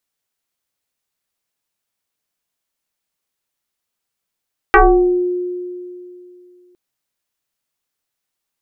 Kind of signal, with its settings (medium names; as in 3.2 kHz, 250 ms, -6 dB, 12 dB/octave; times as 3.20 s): FM tone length 2.01 s, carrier 358 Hz, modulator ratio 1.09, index 4.7, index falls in 0.61 s exponential, decay 2.70 s, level -4 dB